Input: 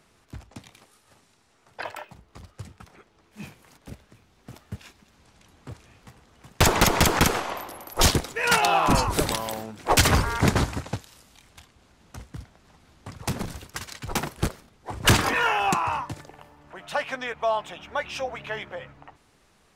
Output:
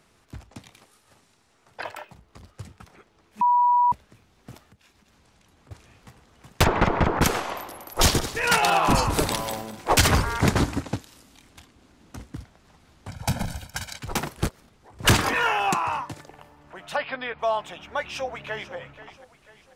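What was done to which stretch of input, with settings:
1.88–2.46 core saturation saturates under 510 Hz
3.41–3.92 bleep 973 Hz -15.5 dBFS
4.63–5.71 compressor 4:1, threshold -55 dBFS
6.63–7.21 LPF 2300 Hz -> 1300 Hz
7.9–10.1 regenerating reverse delay 0.101 s, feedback 55%, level -11 dB
10.6–12.36 bell 280 Hz +8 dB
13.08–13.98 comb 1.3 ms, depth 87%
14.49–14.99 compressor 5:1, threshold -49 dBFS
15.62–16.29 low shelf 84 Hz -10 dB
16.96–17.39 brick-wall FIR low-pass 5200 Hz
17.99–18.75 echo throw 0.49 s, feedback 45%, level -14.5 dB

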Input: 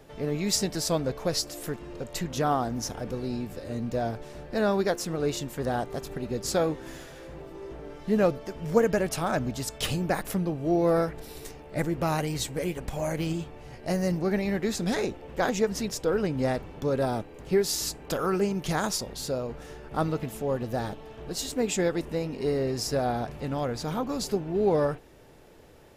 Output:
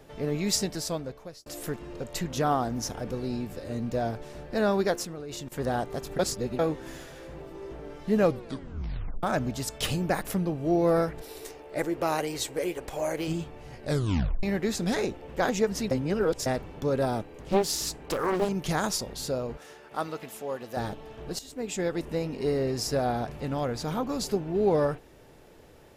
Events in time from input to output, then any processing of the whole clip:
0.49–1.46 fade out
5.03–5.52 level quantiser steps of 19 dB
6.19–6.59 reverse
8.24 tape stop 0.99 s
11.22–13.28 resonant low shelf 270 Hz -8.5 dB, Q 1.5
13.82 tape stop 0.61 s
15.91–16.46 reverse
17.38–18.49 Doppler distortion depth 0.92 ms
19.57–20.77 HPF 720 Hz 6 dB/oct
21.39–22.14 fade in, from -14.5 dB

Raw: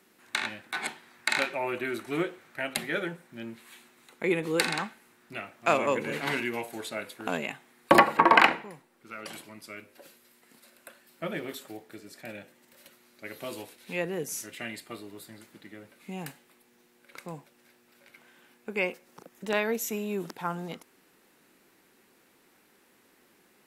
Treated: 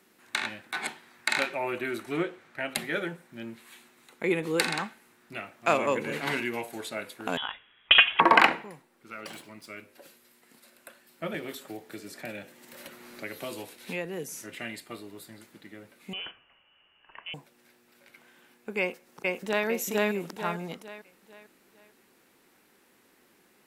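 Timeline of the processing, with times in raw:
2.12–2.69 high shelf 8700 Hz -11 dB
7.37–8.2 inverted band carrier 3600 Hz
9.2–9.67 median filter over 3 samples
11.34–14.59 three-band squash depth 70%
16.13–17.34 inverted band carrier 3200 Hz
18.79–19.66 echo throw 0.45 s, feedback 40%, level -0.5 dB

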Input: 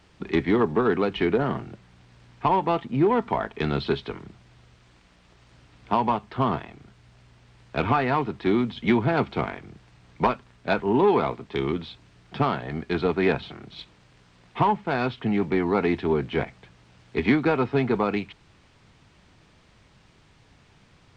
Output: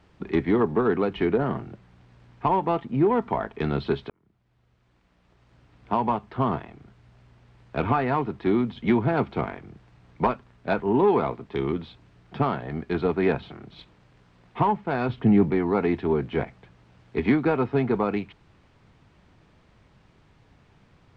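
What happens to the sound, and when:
4.1–6.1 fade in
15.09–15.51 low shelf 460 Hz +8 dB
whole clip: high shelf 2600 Hz -10.5 dB

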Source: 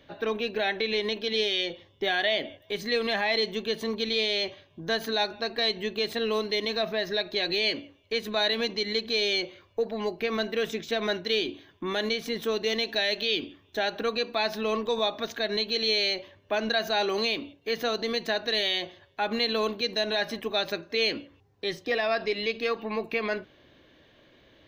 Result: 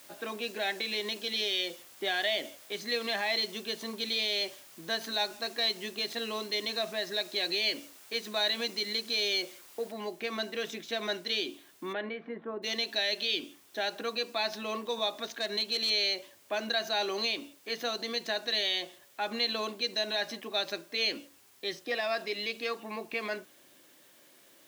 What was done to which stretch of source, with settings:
9.92 noise floor step -49 dB -56 dB
11.92–12.62 LPF 2700 Hz -> 1300 Hz 24 dB/oct
15.24–15.9 hard clip -20 dBFS
whole clip: HPF 220 Hz 12 dB/oct; notch 440 Hz, Q 12; dynamic EQ 5700 Hz, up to +5 dB, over -42 dBFS, Q 0.93; gain -5 dB

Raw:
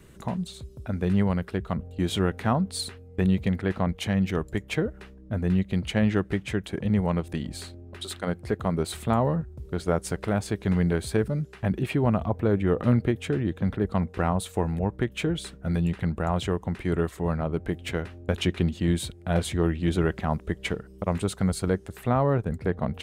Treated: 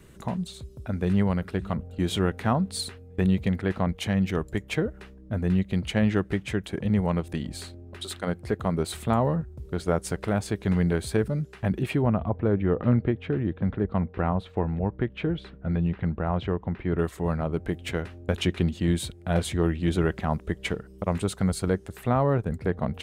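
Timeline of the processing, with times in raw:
0.54–1.26 echo throw 0.52 s, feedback 45%, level -17.5 dB
12.02–16.99 air absorption 330 m

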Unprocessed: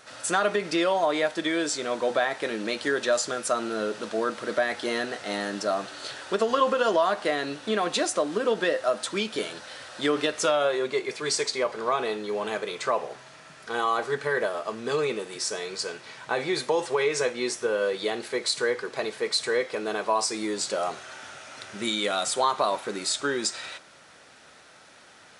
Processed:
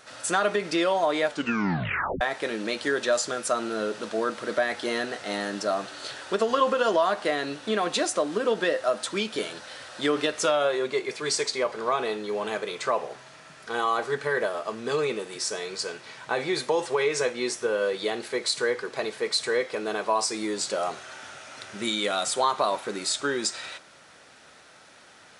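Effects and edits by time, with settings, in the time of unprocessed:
1.27 tape stop 0.94 s

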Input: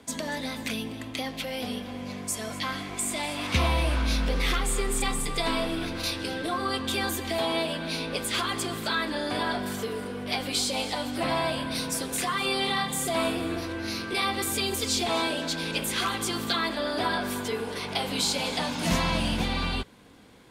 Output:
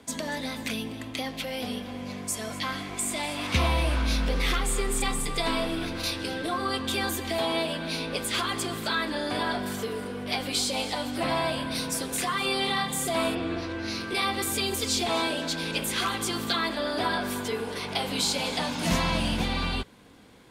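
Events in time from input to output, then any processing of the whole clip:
13.34–13.99 LPF 3700 Hz -> 9300 Hz

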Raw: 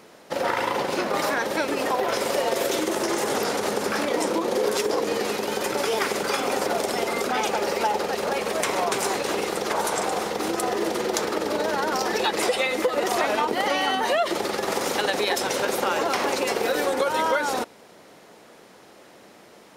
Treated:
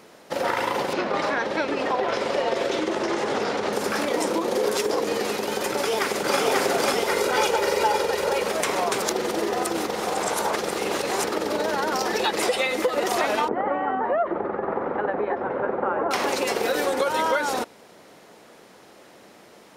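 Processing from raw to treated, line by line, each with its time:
0.93–3.73 LPF 4300 Hz
5.71–6.38 echo throw 0.54 s, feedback 65%, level -0.5 dB
7.08–8.44 comb 2.1 ms, depth 54%
9.02–11.24 reverse
13.48–16.11 LPF 1500 Hz 24 dB/oct

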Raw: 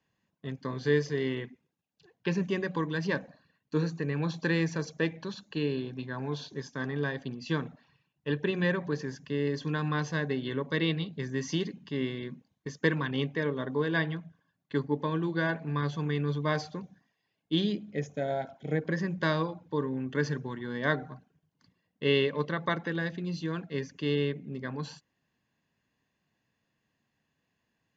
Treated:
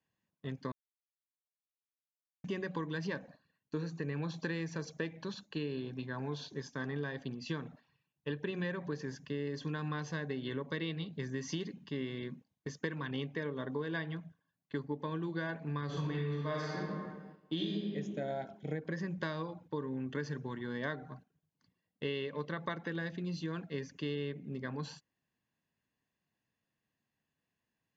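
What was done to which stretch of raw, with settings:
0.72–2.44 mute
15.85–17.86 reverb throw, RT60 1.4 s, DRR -4.5 dB
whole clip: gate -50 dBFS, range -6 dB; compressor, threshold -31 dBFS; gain -2.5 dB

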